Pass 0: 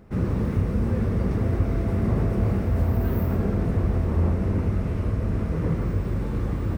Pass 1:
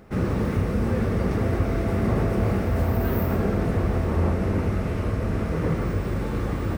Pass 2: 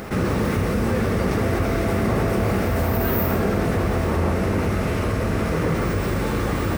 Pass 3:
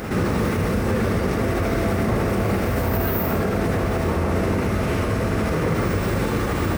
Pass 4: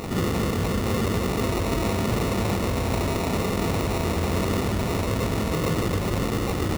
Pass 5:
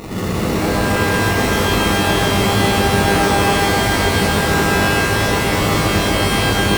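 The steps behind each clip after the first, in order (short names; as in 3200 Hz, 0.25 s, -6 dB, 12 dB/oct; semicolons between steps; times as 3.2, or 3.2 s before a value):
low shelf 310 Hz -8.5 dB; notch 1000 Hz, Q 19; gain +6.5 dB
tilt +1.5 dB/oct; fast leveller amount 50%; gain +4 dB
limiter -14.5 dBFS, peak gain reduction 5 dB; reverse echo 76 ms -9 dB; gain +1.5 dB
sample-rate reducer 1600 Hz, jitter 0%; gain -3 dB
shimmer reverb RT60 3.8 s, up +12 st, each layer -2 dB, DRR -4.5 dB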